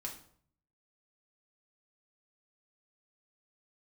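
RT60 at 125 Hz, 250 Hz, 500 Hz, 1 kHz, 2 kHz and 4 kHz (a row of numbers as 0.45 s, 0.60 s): 0.90 s, 0.70 s, 0.60 s, 0.55 s, 0.45 s, 0.40 s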